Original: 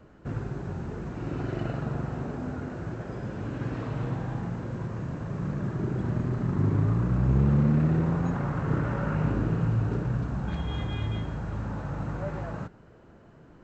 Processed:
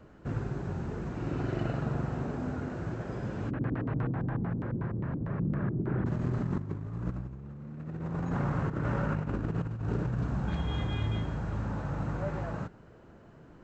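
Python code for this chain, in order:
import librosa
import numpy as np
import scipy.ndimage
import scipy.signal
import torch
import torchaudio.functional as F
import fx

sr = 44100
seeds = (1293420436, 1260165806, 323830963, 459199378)

y = fx.filter_lfo_lowpass(x, sr, shape='square', hz=fx.line((3.49, 9.9), (6.05, 2.6)), low_hz=310.0, high_hz=1800.0, q=1.5, at=(3.49, 6.05), fade=0.02)
y = fx.over_compress(y, sr, threshold_db=-28.0, ratio=-0.5)
y = y * 10.0 ** (-2.5 / 20.0)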